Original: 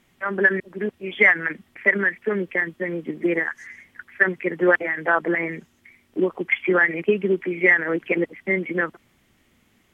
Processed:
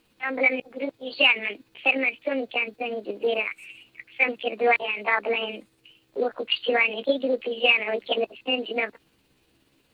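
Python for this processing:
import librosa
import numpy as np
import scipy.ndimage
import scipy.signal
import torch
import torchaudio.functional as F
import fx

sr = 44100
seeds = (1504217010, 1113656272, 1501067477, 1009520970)

y = fx.pitch_heads(x, sr, semitones=5.0)
y = y * librosa.db_to_amplitude(-2.0)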